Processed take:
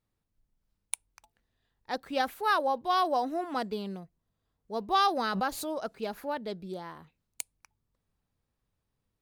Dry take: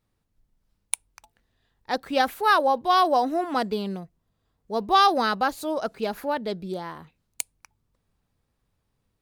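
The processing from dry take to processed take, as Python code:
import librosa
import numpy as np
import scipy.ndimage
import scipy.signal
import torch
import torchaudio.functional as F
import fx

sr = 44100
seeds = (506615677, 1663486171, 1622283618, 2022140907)

y = fx.pre_swell(x, sr, db_per_s=54.0, at=(5.31, 5.73))
y = y * librosa.db_to_amplitude(-7.0)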